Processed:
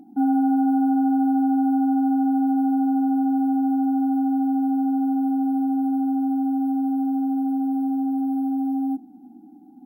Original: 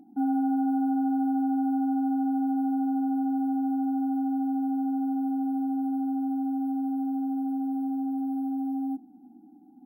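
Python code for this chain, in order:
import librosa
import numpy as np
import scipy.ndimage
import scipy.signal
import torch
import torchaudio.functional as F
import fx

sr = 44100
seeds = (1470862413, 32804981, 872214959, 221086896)

y = x * 10.0 ** (6.0 / 20.0)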